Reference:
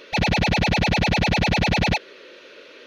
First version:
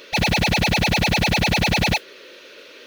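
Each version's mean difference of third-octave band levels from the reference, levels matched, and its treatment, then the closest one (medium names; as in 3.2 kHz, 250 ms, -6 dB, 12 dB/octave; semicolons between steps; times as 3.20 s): 3.5 dB: treble shelf 4.5 kHz +9.5 dB; modulation noise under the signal 22 dB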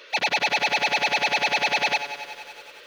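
7.5 dB: high-pass 620 Hz 12 dB/octave; bit-crushed delay 93 ms, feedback 80%, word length 8-bit, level -12.5 dB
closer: first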